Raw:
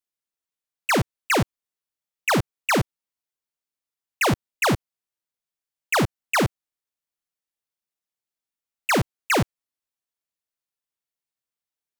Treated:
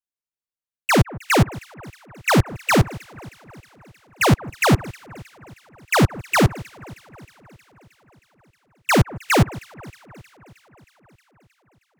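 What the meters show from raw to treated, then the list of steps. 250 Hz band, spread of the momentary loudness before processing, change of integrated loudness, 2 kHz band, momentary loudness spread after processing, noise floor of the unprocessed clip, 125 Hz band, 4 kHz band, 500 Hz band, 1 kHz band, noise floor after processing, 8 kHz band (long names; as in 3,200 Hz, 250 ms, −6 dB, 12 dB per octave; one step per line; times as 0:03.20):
+6.0 dB, 7 LU, +4.0 dB, +2.5 dB, 16 LU, below −85 dBFS, +8.5 dB, +3.0 dB, +4.0 dB, +3.0 dB, below −85 dBFS, +2.5 dB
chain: low-shelf EQ 140 Hz +7.5 dB
on a send: delay that swaps between a low-pass and a high-pass 157 ms, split 1,700 Hz, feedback 83%, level −12.5 dB
on the sum: expander for the loud parts 1.5 to 1, over −40 dBFS
level +4.5 dB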